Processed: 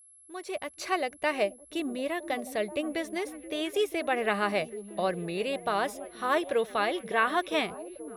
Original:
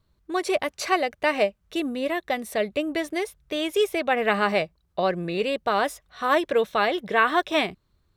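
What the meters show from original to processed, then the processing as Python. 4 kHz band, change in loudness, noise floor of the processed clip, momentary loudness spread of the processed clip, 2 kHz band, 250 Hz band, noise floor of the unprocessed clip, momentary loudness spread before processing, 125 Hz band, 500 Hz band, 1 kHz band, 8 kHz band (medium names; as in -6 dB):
-5.5 dB, -5.5 dB, -56 dBFS, 9 LU, -5.5 dB, -5.0 dB, -69 dBFS, 8 LU, -5.0 dB, -5.5 dB, -5.5 dB, -3.5 dB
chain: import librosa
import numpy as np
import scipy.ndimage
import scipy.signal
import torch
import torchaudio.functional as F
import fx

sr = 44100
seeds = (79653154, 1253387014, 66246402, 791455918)

y = fx.fade_in_head(x, sr, length_s=1.05)
y = y + 10.0 ** (-48.0 / 20.0) * np.sin(2.0 * np.pi * 11000.0 * np.arange(len(y)) / sr)
y = fx.echo_stepped(y, sr, ms=481, hz=250.0, octaves=0.7, feedback_pct=70, wet_db=-9.5)
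y = y * librosa.db_to_amplitude(-5.5)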